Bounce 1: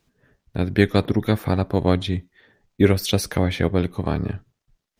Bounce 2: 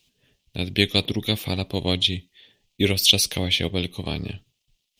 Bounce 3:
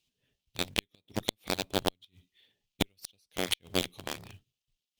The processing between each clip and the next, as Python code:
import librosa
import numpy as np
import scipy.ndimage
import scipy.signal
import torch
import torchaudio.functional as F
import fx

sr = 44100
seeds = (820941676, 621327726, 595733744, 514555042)

y1 = fx.high_shelf_res(x, sr, hz=2100.0, db=11.5, q=3.0)
y1 = y1 * librosa.db_to_amplitude(-5.5)
y2 = fx.gate_flip(y1, sr, shuts_db=-10.0, range_db=-35)
y2 = fx.quant_float(y2, sr, bits=2)
y2 = fx.cheby_harmonics(y2, sr, harmonics=(5, 7), levels_db=(-43, -15), full_scale_db=-6.0)